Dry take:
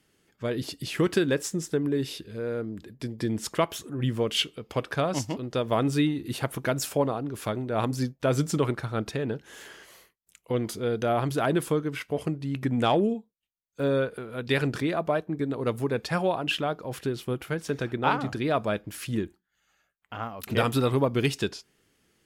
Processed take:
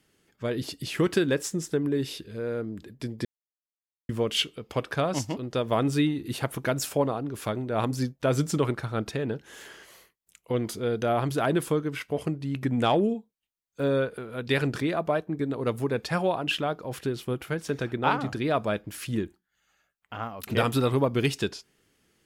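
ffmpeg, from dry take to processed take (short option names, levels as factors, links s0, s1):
-filter_complex "[0:a]asplit=3[s0][s1][s2];[s0]atrim=end=3.25,asetpts=PTS-STARTPTS,afade=t=out:st=3.246:d=0.004:c=hsin[s3];[s1]atrim=start=3.25:end=4.09,asetpts=PTS-STARTPTS,volume=0[s4];[s2]atrim=start=4.09,asetpts=PTS-STARTPTS,afade=t=in:d=0.004:c=hsin[s5];[s3][s4][s5]concat=n=3:v=0:a=1"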